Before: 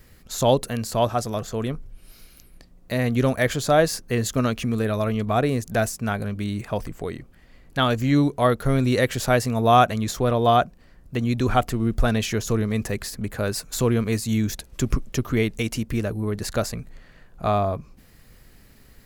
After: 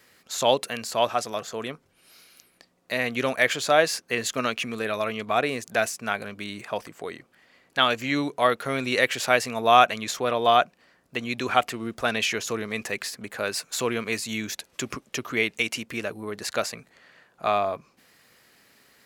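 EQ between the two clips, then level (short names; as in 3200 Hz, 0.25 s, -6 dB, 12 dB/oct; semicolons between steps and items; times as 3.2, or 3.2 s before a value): weighting filter A; dynamic EQ 2500 Hz, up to +6 dB, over -43 dBFS, Q 1.9; 0.0 dB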